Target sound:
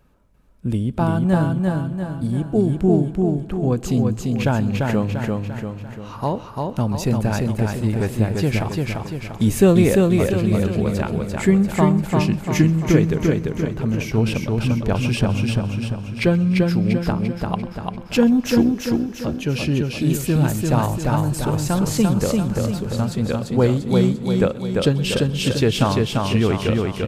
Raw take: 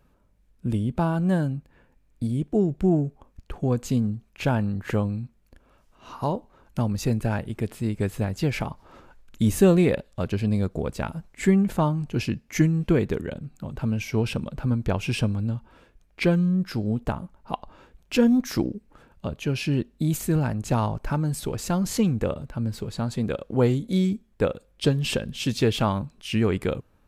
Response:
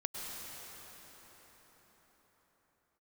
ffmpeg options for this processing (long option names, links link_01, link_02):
-filter_complex "[0:a]aecho=1:1:344|688|1032|1376|1720|2064|2408:0.708|0.354|0.177|0.0885|0.0442|0.0221|0.0111,asplit=2[link_01][link_02];[1:a]atrim=start_sample=2205,adelay=130[link_03];[link_02][link_03]afir=irnorm=-1:irlink=0,volume=-20.5dB[link_04];[link_01][link_04]amix=inputs=2:normalize=0,volume=3.5dB"